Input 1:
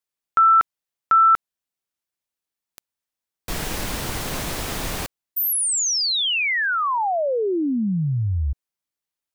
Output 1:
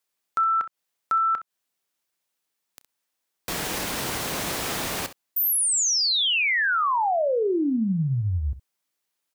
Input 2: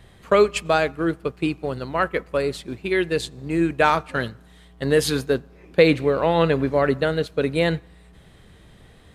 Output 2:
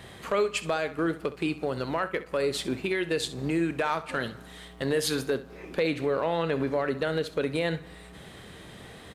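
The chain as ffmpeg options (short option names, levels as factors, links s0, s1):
-af "highpass=f=210:p=1,acompressor=threshold=0.0316:ratio=4:attack=0.19:release=161:knee=1:detection=rms,aecho=1:1:31|65:0.141|0.178,volume=2.37"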